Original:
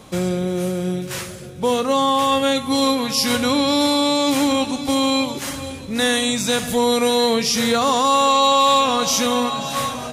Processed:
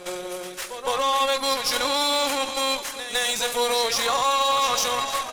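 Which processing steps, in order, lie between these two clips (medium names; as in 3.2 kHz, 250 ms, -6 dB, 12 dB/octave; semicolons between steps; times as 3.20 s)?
high-pass 600 Hz 12 dB/octave; peak limiter -11 dBFS, peak gain reduction 5.5 dB; reverse echo 299 ms -9.5 dB; tempo 1.9×; Chebyshev shaper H 8 -22 dB, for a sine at -8.5 dBFS; trim -1.5 dB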